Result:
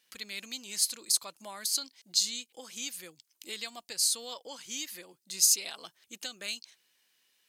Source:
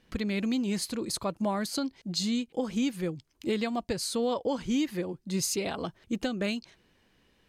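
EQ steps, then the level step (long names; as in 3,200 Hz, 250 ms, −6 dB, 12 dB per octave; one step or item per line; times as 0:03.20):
first difference
dynamic equaliser 5,600 Hz, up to +4 dB, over −51 dBFS, Q 1.1
+6.0 dB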